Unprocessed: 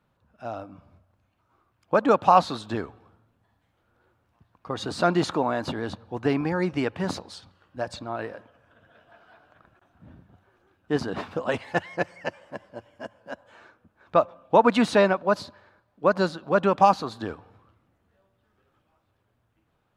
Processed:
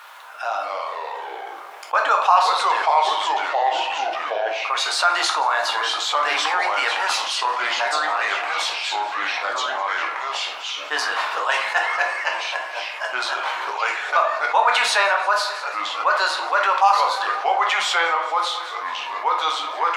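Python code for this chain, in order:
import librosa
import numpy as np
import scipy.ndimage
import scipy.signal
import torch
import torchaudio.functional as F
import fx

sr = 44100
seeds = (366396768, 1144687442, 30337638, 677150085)

p1 = x + fx.echo_feedback(x, sr, ms=175, feedback_pct=58, wet_db=-21.0, dry=0)
p2 = fx.echo_pitch(p1, sr, ms=157, semitones=-3, count=3, db_per_echo=-3.0)
p3 = scipy.signal.sosfilt(scipy.signal.butter(4, 880.0, 'highpass', fs=sr, output='sos'), p2)
p4 = fx.room_shoebox(p3, sr, seeds[0], volume_m3=44.0, walls='mixed', distance_m=0.49)
p5 = fx.env_flatten(p4, sr, amount_pct=50)
y = F.gain(torch.from_numpy(p5), 2.5).numpy()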